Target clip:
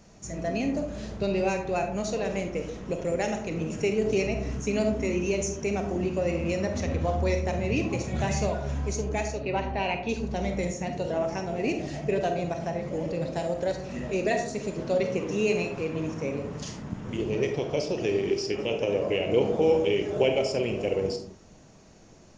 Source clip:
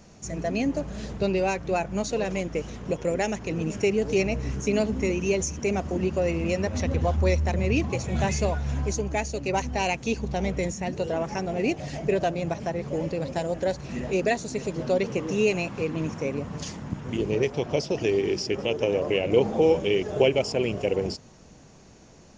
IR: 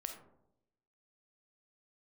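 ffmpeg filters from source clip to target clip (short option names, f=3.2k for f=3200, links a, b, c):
-filter_complex "[0:a]asettb=1/sr,asplit=3[a][b][c];[a]atrim=end=9.324[d];[b]atrim=start=9.32:end=10.09,asetpts=PTS-STARTPTS,afade=t=in:d=0.004:c=qsin,afade=t=out:st=0.766:d=0.004:c=qsin,lowpass=f=3.7k:w=0.5412,lowpass=f=3.7k:w=1.3066[e];[c]atrim=start=10.086[f];[d][e]acrossfade=d=0.004:c1=hsin:c2=qsin[g];[g][f]acrossfade=d=0.004:c1=qsin:c2=hsin[h];[1:a]atrim=start_sample=2205,afade=t=out:st=0.31:d=0.01,atrim=end_sample=14112[i];[h][i]afir=irnorm=-1:irlink=0"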